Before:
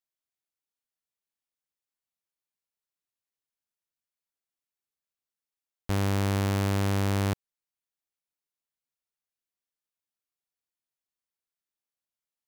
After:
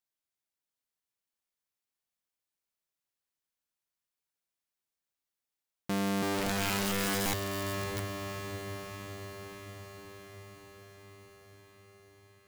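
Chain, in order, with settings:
0:06.21–0:07.26: double-tracking delay 13 ms −2.5 dB
feedback delay with all-pass diffusion 605 ms, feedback 66%, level −6.5 dB
wrap-around overflow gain 26 dB

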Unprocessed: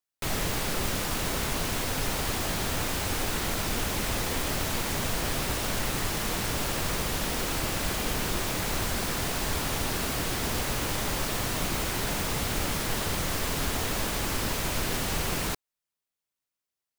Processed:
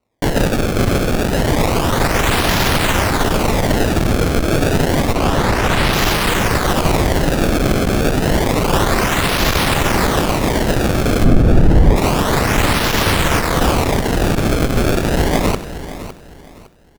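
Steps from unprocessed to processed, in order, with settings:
stylus tracing distortion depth 0.078 ms
sample-and-hold swept by an LFO 26×, swing 160% 0.29 Hz
0:05.13–0:05.93: high-shelf EQ 7,000 Hz −9 dB
repeating echo 559 ms, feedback 28%, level −15 dB
asymmetric clip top −29.5 dBFS
0:11.24–0:11.96: spectral tilt −3 dB per octave
boost into a limiter +18 dB
feedback echo at a low word length 93 ms, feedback 35%, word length 7 bits, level −15 dB
level −1.5 dB

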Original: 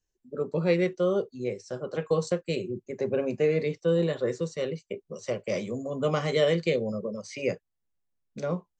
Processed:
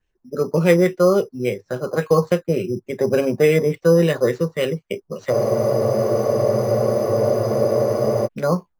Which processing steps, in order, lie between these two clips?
auto-filter low-pass sine 3.5 Hz 970–3,000 Hz
bass and treble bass +2 dB, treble +5 dB
in parallel at −5 dB: decimation without filtering 8×
on the sum: frozen spectrum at 0:05.33, 2.93 s
level +4.5 dB

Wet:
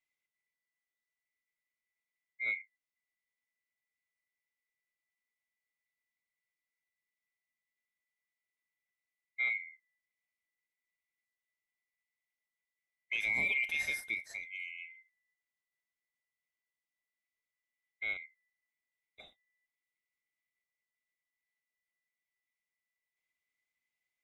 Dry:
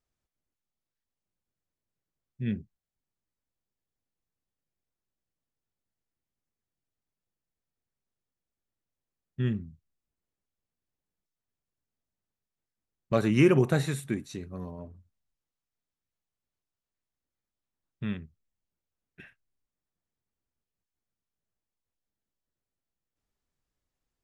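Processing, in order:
neighbouring bands swapped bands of 2,000 Hz
brickwall limiter −19 dBFS, peak gain reduction 9.5 dB
level −5 dB

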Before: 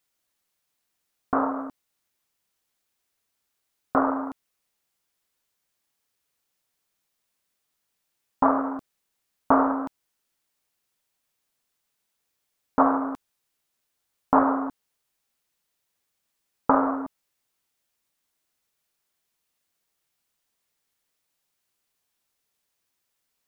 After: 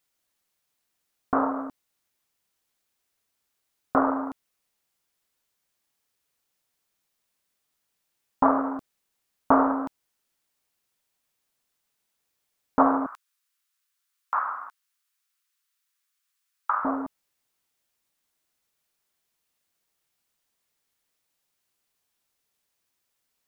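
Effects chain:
0:13.06–0:16.85: Chebyshev high-pass filter 1,200 Hz, order 3

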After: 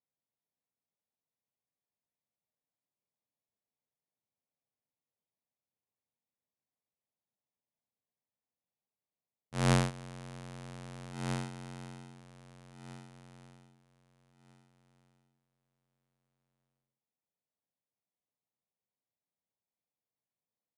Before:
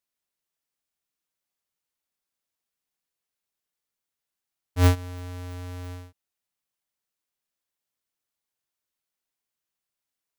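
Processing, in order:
adaptive Wiener filter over 15 samples
high-pass filter 180 Hz 24 dB per octave
repeating echo 798 ms, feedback 19%, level −9.5 dB
wrong playback speed 15 ips tape played at 7.5 ips
parametric band 350 Hz −7 dB 0.43 octaves
level −2 dB

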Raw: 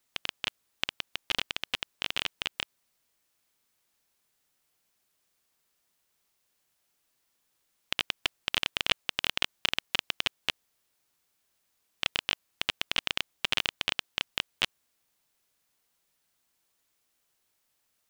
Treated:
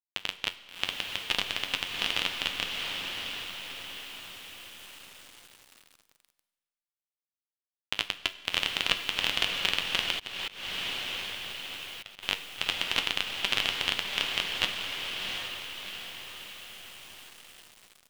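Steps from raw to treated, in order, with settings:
in parallel at −0.5 dB: brickwall limiter −10 dBFS, peak gain reduction 7.5 dB
on the sum: flanger 0.75 Hz, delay 9.8 ms, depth 1.7 ms, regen +61%
on a send: feedback delay with all-pass diffusion 715 ms, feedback 53%, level −3 dB
on the sum: bit-depth reduction 8 bits, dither none
four-comb reverb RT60 1.4 s, combs from 32 ms, DRR 14.5 dB
0:10.13–0:12.23: volume swells 262 ms

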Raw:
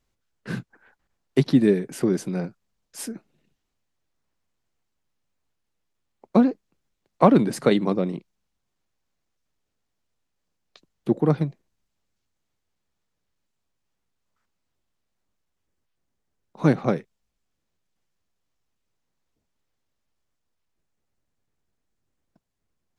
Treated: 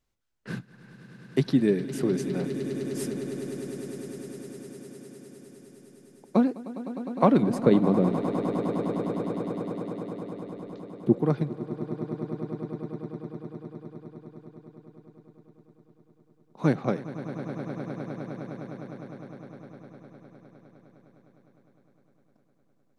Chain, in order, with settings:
0:07.43–0:11.19: tilt shelving filter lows +7 dB, about 770 Hz
echo that builds up and dies away 102 ms, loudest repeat 8, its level −15 dB
level −4.5 dB

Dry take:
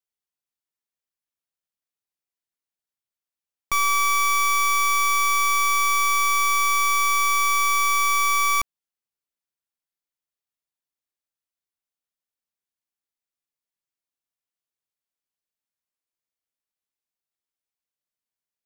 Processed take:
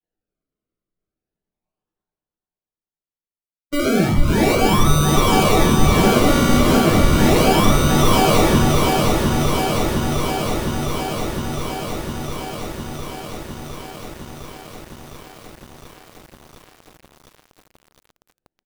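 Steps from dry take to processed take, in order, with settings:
three sine waves on the formant tracks
noise gate with hold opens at −15 dBFS
tilt shelving filter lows −8.5 dB, about 1,300 Hz
comb filter 5.2 ms, depth 81%
hum removal 291.4 Hz, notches 28
reversed playback
upward compression, threshold −49 dBFS
reversed playback
sample-and-hold swept by an LFO 35×, swing 100% 0.35 Hz
repeating echo 435 ms, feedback 55%, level −9 dB
rectangular room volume 48 cubic metres, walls mixed, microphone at 0.94 metres
feedback echo at a low word length 708 ms, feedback 80%, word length 6 bits, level −4 dB
level −8.5 dB

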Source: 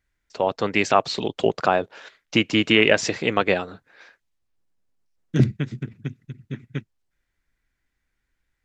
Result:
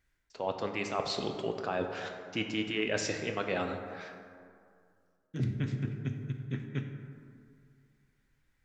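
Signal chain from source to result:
reversed playback
downward compressor 6 to 1, threshold −31 dBFS, peak gain reduction 18.5 dB
reversed playback
dense smooth reverb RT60 2.3 s, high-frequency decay 0.4×, DRR 4 dB

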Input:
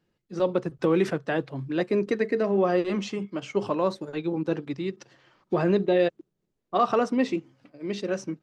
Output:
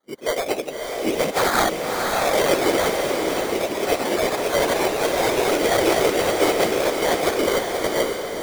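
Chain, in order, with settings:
played backwards from end to start
high-pass filter 440 Hz 24 dB per octave
noise reduction from a noise print of the clip's start 12 dB
low-pass filter 1,800 Hz 24 dB per octave
in parallel at +1 dB: downward compressor, threshold −37 dBFS, peak gain reduction 17.5 dB
on the sum: hard clipping −27.5 dBFS, distortion −6 dB
random phases in short frames
decimation without filtering 17×
delay with pitch and tempo change per echo 139 ms, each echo +2 semitones, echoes 2
on a send: feedback delay with all-pass diffusion 569 ms, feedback 46%, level −3.5 dB
on the sum: level +8.5 dB

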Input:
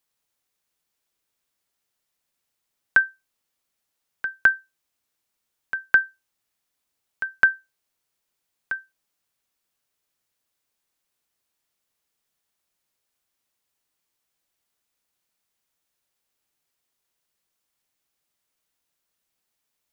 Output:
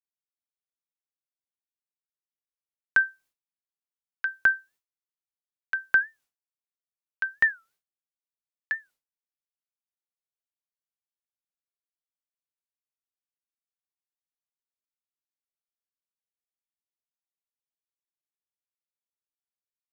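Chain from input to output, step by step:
downward expander −50 dBFS
brickwall limiter −11 dBFS, peak gain reduction 5.5 dB
wow of a warped record 45 rpm, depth 250 cents

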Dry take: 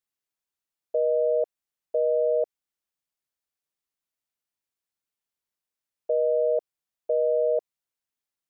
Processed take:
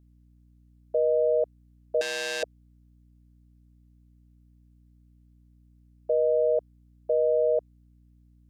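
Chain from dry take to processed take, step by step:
mains hum 60 Hz, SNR 29 dB
0:02.01–0:02.43: saturating transformer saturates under 4,000 Hz

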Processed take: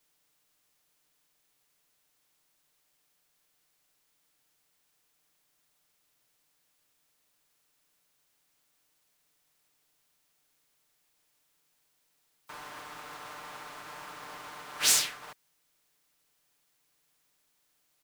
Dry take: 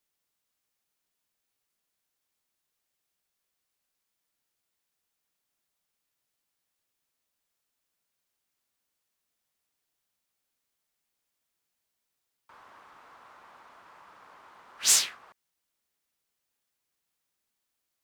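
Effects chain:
compressing power law on the bin magnitudes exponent 0.66
comb filter 6.7 ms, depth 91%
downward compressor 2.5 to 1, threshold −33 dBFS, peak gain reduction 12.5 dB
level +6.5 dB

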